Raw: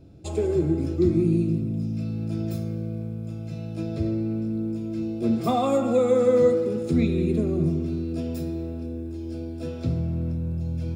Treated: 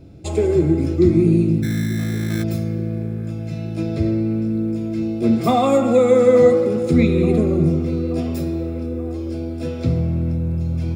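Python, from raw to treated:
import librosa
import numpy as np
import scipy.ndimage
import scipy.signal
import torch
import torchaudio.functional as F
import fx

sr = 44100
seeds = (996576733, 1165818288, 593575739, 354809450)

p1 = fx.peak_eq(x, sr, hz=2100.0, db=6.5, octaves=0.27)
p2 = fx.sample_hold(p1, sr, seeds[0], rate_hz=1900.0, jitter_pct=0, at=(1.62, 2.42), fade=0.02)
p3 = p2 + fx.echo_wet_bandpass(p2, sr, ms=880, feedback_pct=58, hz=800.0, wet_db=-15.5, dry=0)
y = p3 * 10.0 ** (6.5 / 20.0)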